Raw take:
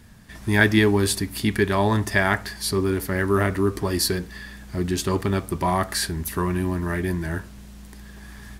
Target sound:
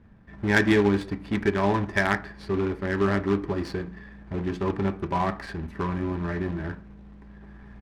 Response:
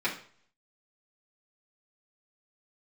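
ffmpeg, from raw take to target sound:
-filter_complex "[0:a]atempo=1.1,acrusher=bits=2:mode=log:mix=0:aa=0.000001,asplit=2[a][b];[1:a]atrim=start_sample=2205[c];[b][c]afir=irnorm=-1:irlink=0,volume=-14dB[d];[a][d]amix=inputs=2:normalize=0,adynamicsmooth=sensitivity=0.5:basefreq=1.4k,volume=-4.5dB"

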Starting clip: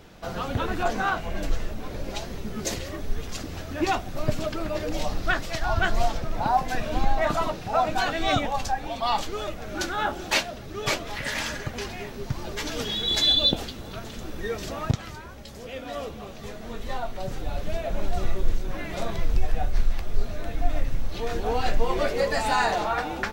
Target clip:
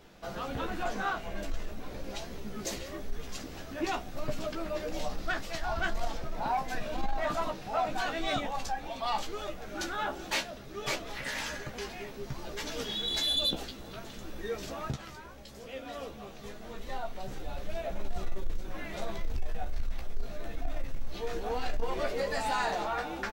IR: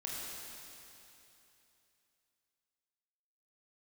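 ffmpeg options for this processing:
-filter_complex "[0:a]equalizer=f=92:t=o:w=1:g=-8.5,asoftclip=type=tanh:threshold=-17dB,asplit=2[a][b];[b]adelay=15,volume=-6.5dB[c];[a][c]amix=inputs=2:normalize=0,volume=-6.5dB"

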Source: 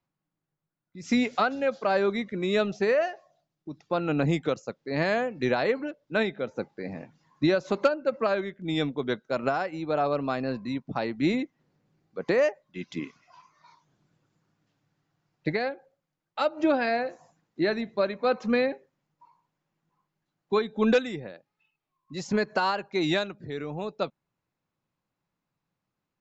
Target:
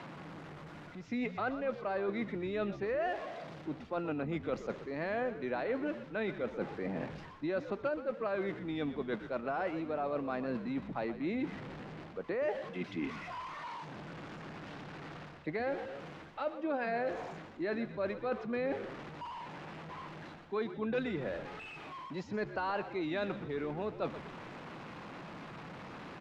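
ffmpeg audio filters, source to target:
-filter_complex "[0:a]aeval=exprs='val(0)+0.5*0.01*sgn(val(0))':c=same,areverse,acompressor=threshold=-35dB:ratio=6,areverse,highpass=170,lowpass=2.6k,asplit=6[a][b][c][d][e][f];[b]adelay=123,afreqshift=-68,volume=-12.5dB[g];[c]adelay=246,afreqshift=-136,volume=-19.2dB[h];[d]adelay=369,afreqshift=-204,volume=-26dB[i];[e]adelay=492,afreqshift=-272,volume=-32.7dB[j];[f]adelay=615,afreqshift=-340,volume=-39.5dB[k];[a][g][h][i][j][k]amix=inputs=6:normalize=0,volume=2dB"

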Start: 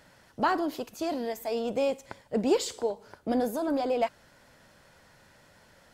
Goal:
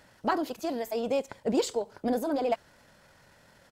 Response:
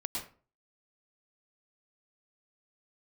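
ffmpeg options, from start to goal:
-af "atempo=1.6"

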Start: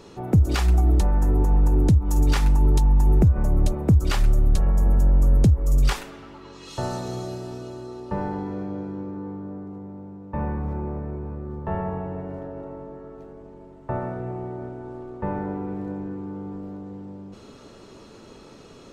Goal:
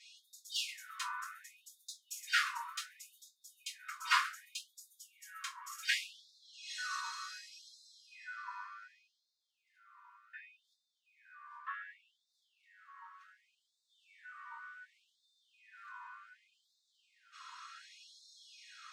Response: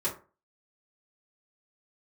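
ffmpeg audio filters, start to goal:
-filter_complex "[0:a]aemphasis=mode=reproduction:type=50kf,acrossover=split=140|1200|3600[a][b][c][d];[d]asoftclip=type=tanh:threshold=-35.5dB[e];[a][b][c][e]amix=inputs=4:normalize=0[f];[1:a]atrim=start_sample=2205,asetrate=37044,aresample=44100[g];[f][g]afir=irnorm=-1:irlink=0,afftfilt=real='re*gte(b*sr/1024,940*pow(3500/940,0.5+0.5*sin(2*PI*0.67*pts/sr)))':imag='im*gte(b*sr/1024,940*pow(3500/940,0.5+0.5*sin(2*PI*0.67*pts/sr)))':win_size=1024:overlap=0.75,volume=-1.5dB"

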